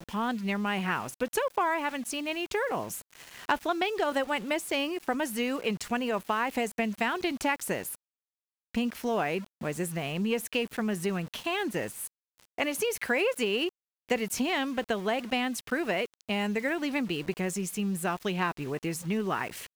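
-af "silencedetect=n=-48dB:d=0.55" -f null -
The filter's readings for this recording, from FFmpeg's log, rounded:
silence_start: 7.96
silence_end: 8.75 | silence_duration: 0.79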